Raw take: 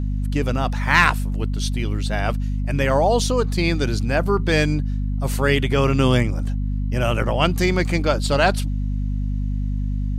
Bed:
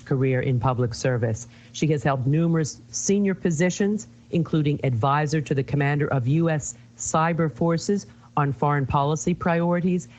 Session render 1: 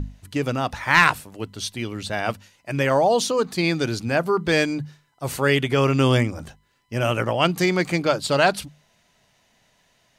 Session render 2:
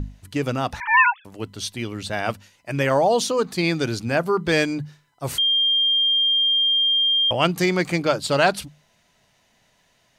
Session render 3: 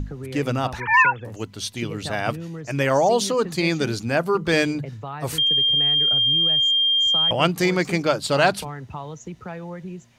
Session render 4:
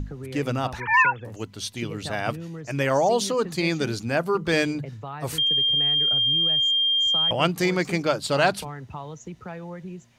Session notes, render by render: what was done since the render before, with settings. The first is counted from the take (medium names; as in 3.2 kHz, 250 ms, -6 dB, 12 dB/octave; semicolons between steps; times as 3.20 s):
hum notches 50/100/150/200/250 Hz
0.80–1.25 s: formants replaced by sine waves; 5.38–7.31 s: bleep 3.2 kHz -16 dBFS
add bed -12.5 dB
trim -2.5 dB